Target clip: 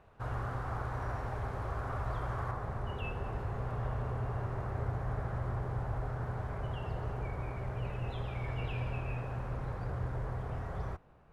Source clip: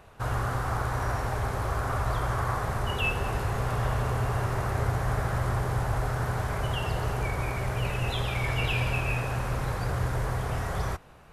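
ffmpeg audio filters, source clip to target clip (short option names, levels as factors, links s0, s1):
-af "asetnsamples=n=441:p=0,asendcmd='2.51 lowpass f 1000',lowpass=f=1800:p=1,volume=0.422"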